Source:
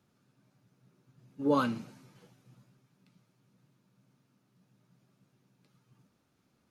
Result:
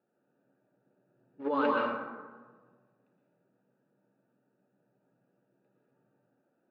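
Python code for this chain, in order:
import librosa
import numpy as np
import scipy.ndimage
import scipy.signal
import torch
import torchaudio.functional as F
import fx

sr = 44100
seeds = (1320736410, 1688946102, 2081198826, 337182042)

p1 = fx.wiener(x, sr, points=41)
p2 = scipy.signal.sosfilt(scipy.signal.butter(2, 680.0, 'highpass', fs=sr, output='sos'), p1)
p3 = fx.high_shelf(p2, sr, hz=5600.0, db=-8.5)
p4 = fx.over_compress(p3, sr, threshold_db=-38.0, ratio=-0.5)
p5 = p3 + F.gain(torch.from_numpy(p4), 1.5).numpy()
p6 = fx.air_absorb(p5, sr, metres=310.0)
y = fx.rev_plate(p6, sr, seeds[0], rt60_s=1.3, hf_ratio=0.5, predelay_ms=105, drr_db=-2.5)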